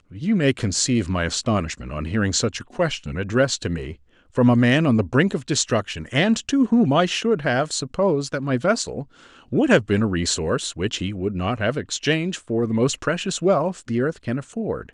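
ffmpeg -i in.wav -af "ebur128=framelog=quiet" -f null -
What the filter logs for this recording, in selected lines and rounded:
Integrated loudness:
  I:         -21.7 LUFS
  Threshold: -31.8 LUFS
Loudness range:
  LRA:         3.6 LU
  Threshold: -41.6 LUFS
  LRA low:   -23.2 LUFS
  LRA high:  -19.7 LUFS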